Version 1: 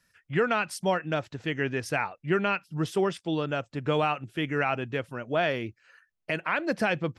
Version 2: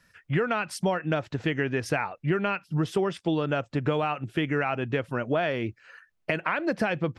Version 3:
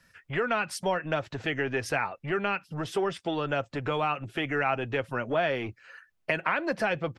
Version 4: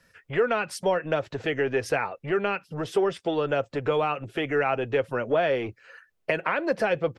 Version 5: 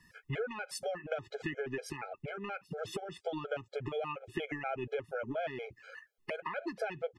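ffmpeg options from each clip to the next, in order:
-af "acompressor=threshold=-31dB:ratio=6,highshelf=f=4.3k:g=-8,volume=8.5dB"
-filter_complex "[0:a]acrossover=split=400[a][b];[a]asoftclip=type=tanh:threshold=-34dB[c];[b]aecho=1:1:7.5:0.31[d];[c][d]amix=inputs=2:normalize=0"
-af "equalizer=f=470:t=o:w=0.74:g=8"
-af "acompressor=threshold=-32dB:ratio=10,afftfilt=real='re*gt(sin(2*PI*4.2*pts/sr)*(1-2*mod(floor(b*sr/1024/420),2)),0)':imag='im*gt(sin(2*PI*4.2*pts/sr)*(1-2*mod(floor(b*sr/1024/420),2)),0)':win_size=1024:overlap=0.75,volume=1dB"

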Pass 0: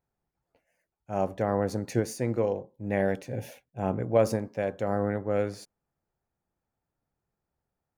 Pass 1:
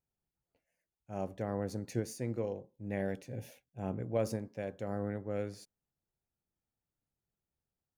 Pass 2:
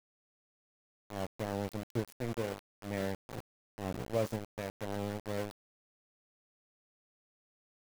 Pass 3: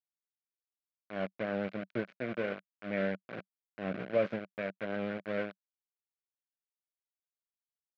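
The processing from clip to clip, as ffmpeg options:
-af "equalizer=f=970:w=0.61:g=-6,volume=-6.5dB"
-af "aeval=exprs='val(0)*gte(abs(val(0)),0.015)':c=same"
-af "highpass=180,equalizer=f=190:t=q:w=4:g=7,equalizer=f=600:t=q:w=4:g=7,equalizer=f=880:t=q:w=4:g=-9,equalizer=f=1.5k:t=q:w=4:g=10,equalizer=f=2.3k:t=q:w=4:g=8,lowpass=f=3.5k:w=0.5412,lowpass=f=3.5k:w=1.3066"

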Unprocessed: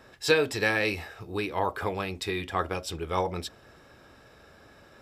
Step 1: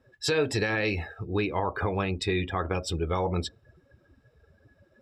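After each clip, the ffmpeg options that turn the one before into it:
-af "afftdn=nr=21:nf=-43,lowshelf=f=250:g=6.5,alimiter=limit=-19dB:level=0:latency=1:release=110,volume=2.5dB"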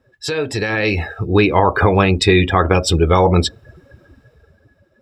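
-af "dynaudnorm=f=210:g=9:m=12dB,volume=3.5dB"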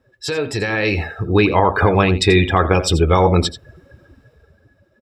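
-af "aecho=1:1:86:0.2,volume=-1dB"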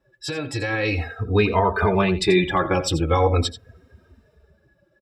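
-filter_complex "[0:a]asplit=2[a][b];[b]adelay=3,afreqshift=-0.42[c];[a][c]amix=inputs=2:normalize=1,volume=-2dB"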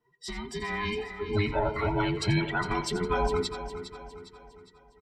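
-af "afftfilt=real='real(if(between(b,1,1008),(2*floor((b-1)/24)+1)*24-b,b),0)':imag='imag(if(between(b,1,1008),(2*floor((b-1)/24)+1)*24-b,b),0)*if(between(b,1,1008),-1,1)':win_size=2048:overlap=0.75,aecho=1:1:408|816|1224|1632|2040:0.282|0.127|0.0571|0.0257|0.0116,volume=-8.5dB"

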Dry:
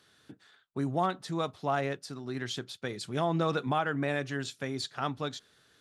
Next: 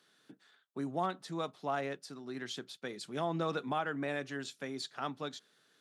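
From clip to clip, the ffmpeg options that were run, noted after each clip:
-af "highpass=f=160:w=0.5412,highpass=f=160:w=1.3066,volume=-5dB"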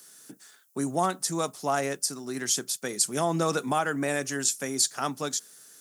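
-af "aexciter=amount=10:drive=4.3:freq=5.4k,volume=8dB"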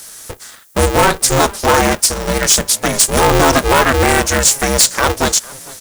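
-filter_complex "[0:a]aeval=exprs='0.398*sin(PI/2*3.16*val(0)/0.398)':c=same,asplit=3[a][b][c];[b]adelay=452,afreqshift=47,volume=-22.5dB[d];[c]adelay=904,afreqshift=94,volume=-31.4dB[e];[a][d][e]amix=inputs=3:normalize=0,aeval=exprs='val(0)*sgn(sin(2*PI*200*n/s))':c=same,volume=3.5dB"

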